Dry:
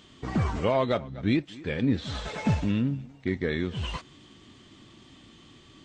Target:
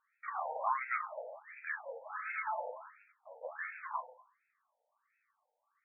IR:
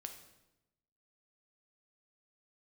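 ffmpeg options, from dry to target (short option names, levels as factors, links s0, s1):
-filter_complex "[0:a]agate=range=0.126:threshold=0.00631:ratio=16:detection=peak[s0];[1:a]atrim=start_sample=2205,asetrate=70560,aresample=44100[s1];[s0][s1]afir=irnorm=-1:irlink=0,afftfilt=real='re*between(b*sr/1024,650*pow(1900/650,0.5+0.5*sin(2*PI*1.4*pts/sr))/1.41,650*pow(1900/650,0.5+0.5*sin(2*PI*1.4*pts/sr))*1.41)':imag='im*between(b*sr/1024,650*pow(1900/650,0.5+0.5*sin(2*PI*1.4*pts/sr))/1.41,650*pow(1900/650,0.5+0.5*sin(2*PI*1.4*pts/sr))*1.41)':win_size=1024:overlap=0.75,volume=3.76"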